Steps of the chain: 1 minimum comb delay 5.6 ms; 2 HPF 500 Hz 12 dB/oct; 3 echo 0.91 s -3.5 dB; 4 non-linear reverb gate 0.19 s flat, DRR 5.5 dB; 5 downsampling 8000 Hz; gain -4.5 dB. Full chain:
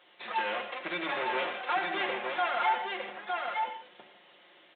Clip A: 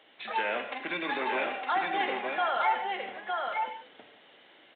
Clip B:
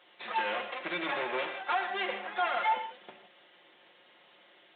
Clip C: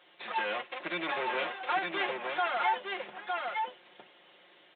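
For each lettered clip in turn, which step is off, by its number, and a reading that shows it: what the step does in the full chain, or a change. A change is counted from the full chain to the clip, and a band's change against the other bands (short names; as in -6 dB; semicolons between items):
1, 4 kHz band -2.0 dB; 3, momentary loudness spread change -1 LU; 4, loudness change -1.0 LU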